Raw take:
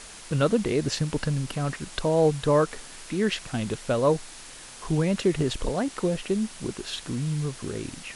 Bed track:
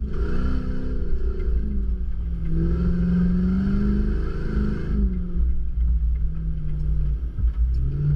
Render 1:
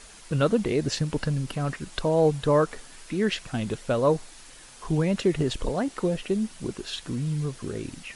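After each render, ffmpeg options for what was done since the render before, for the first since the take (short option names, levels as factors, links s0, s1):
-af "afftdn=nr=6:nf=-44"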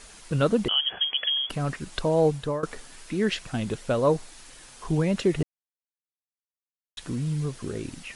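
-filter_complex "[0:a]asettb=1/sr,asplit=3[s0][s1][s2];[s0]atrim=end=0.684[s3];[s1]atrim=start=0.68:end=1.5,asetpts=PTS-STARTPTS,afade=t=in:d=0.004:c=qsin,afade=t=out:st=0.816:d=0.004:c=qsin,lowpass=f=2900:t=q:w=0.5098,lowpass=f=2900:t=q:w=0.6013,lowpass=f=2900:t=q:w=0.9,lowpass=f=2900:t=q:w=2.563,afreqshift=-3400[s4];[s2]atrim=start=1.496[s5];[s3][s4]acrossfade=d=0.004:c1=hsin:c2=qsin[s6];[s6][s5]acrossfade=d=0.004:c1=qsin:c2=hsin,asplit=4[s7][s8][s9][s10];[s7]atrim=end=2.63,asetpts=PTS-STARTPTS,afade=t=out:st=2.14:d=0.49:c=qsin:silence=0.141254[s11];[s8]atrim=start=2.63:end=5.43,asetpts=PTS-STARTPTS,afade=t=in:d=0.004:c=hsin:silence=0.141254,afade=t=out:st=2.796:d=0.004:c=hsin[s12];[s9]atrim=start=5.43:end=6.97,asetpts=PTS-STARTPTS,volume=0[s13];[s10]atrim=start=6.97,asetpts=PTS-STARTPTS,afade=t=in:d=0.004:c=hsin[s14];[s11][s12][s13][s14]concat=n=4:v=0:a=1"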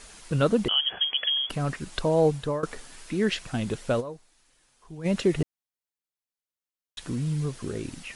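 -filter_complex "[0:a]asplit=3[s0][s1][s2];[s0]atrim=end=4.15,asetpts=PTS-STARTPTS,afade=t=out:st=4:d=0.15:c=exp:silence=0.141254[s3];[s1]atrim=start=4.15:end=4.91,asetpts=PTS-STARTPTS,volume=0.141[s4];[s2]atrim=start=4.91,asetpts=PTS-STARTPTS,afade=t=in:d=0.15:c=exp:silence=0.141254[s5];[s3][s4][s5]concat=n=3:v=0:a=1"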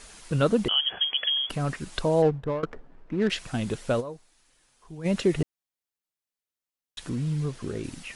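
-filter_complex "[0:a]asettb=1/sr,asplit=3[s0][s1][s2];[s0]atrim=end=2.224[s3];[s1]atrim=start=2.22:end=3.3,asetpts=PTS-STARTPTS,afade=t=in:d=0.004:c=qsin,afade=t=out:st=1.076:d=0.004:c=qsin,adynamicsmooth=sensitivity=2.5:basefreq=640[s4];[s2]atrim=start=3.296[s5];[s3][s4]acrossfade=d=0.004:c1=hsin:c2=qsin[s6];[s6][s5]acrossfade=d=0.004:c1=qsin:c2=hsin,asettb=1/sr,asplit=3[s7][s8][s9];[s7]atrim=end=7.094[s10];[s8]atrim=start=7.09:end=7.84,asetpts=PTS-STARTPTS,afade=t=in:d=0.004:c=qsin,afade=t=out:st=0.746:d=0.004:c=qsin,highshelf=f=8300:g=-9[s11];[s9]atrim=start=7.836[s12];[s10][s11]acrossfade=d=0.004:c1=hsin:c2=qsin[s13];[s13][s12]acrossfade=d=0.004:c1=qsin:c2=hsin"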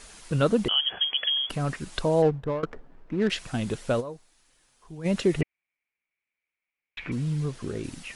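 -filter_complex "[0:a]asettb=1/sr,asplit=3[s0][s1][s2];[s0]atrim=end=5.414[s3];[s1]atrim=start=5.41:end=7.12,asetpts=PTS-STARTPTS,afade=t=in:d=0.004:c=qsin,afade=t=out:st=1.706:d=0.004:c=qsin,lowpass=f=2300:t=q:w=12[s4];[s2]atrim=start=7.116[s5];[s3][s4]acrossfade=d=0.004:c1=hsin:c2=qsin[s6];[s6][s5]acrossfade=d=0.004:c1=qsin:c2=hsin"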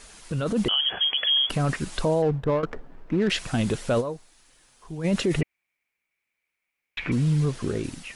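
-af "alimiter=limit=0.0841:level=0:latency=1:release=15,dynaudnorm=f=110:g=9:m=2"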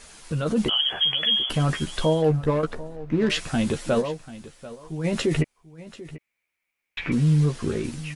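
-filter_complex "[0:a]asplit=2[s0][s1];[s1]adelay=13,volume=0.501[s2];[s0][s2]amix=inputs=2:normalize=0,aecho=1:1:740:0.141"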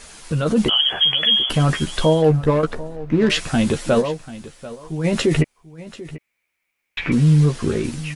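-af "volume=1.88"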